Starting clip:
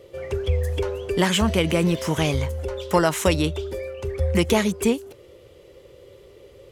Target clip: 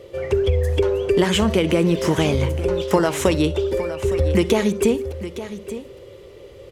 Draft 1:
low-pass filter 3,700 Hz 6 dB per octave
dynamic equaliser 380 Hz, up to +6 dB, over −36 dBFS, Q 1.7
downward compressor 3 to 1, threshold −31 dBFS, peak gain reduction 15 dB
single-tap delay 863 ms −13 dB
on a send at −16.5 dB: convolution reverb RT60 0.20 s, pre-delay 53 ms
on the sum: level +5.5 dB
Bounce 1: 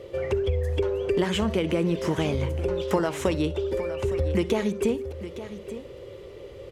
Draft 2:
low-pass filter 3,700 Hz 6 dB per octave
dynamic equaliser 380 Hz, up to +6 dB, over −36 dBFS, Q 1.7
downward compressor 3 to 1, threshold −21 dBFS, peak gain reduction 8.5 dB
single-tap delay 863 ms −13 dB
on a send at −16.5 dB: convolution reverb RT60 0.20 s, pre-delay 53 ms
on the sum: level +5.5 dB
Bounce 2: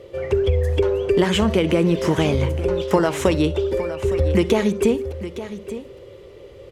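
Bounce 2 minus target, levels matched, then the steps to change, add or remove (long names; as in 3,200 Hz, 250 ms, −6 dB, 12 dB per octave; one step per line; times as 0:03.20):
8,000 Hz band −4.0 dB
change: low-pass filter 7,900 Hz 6 dB per octave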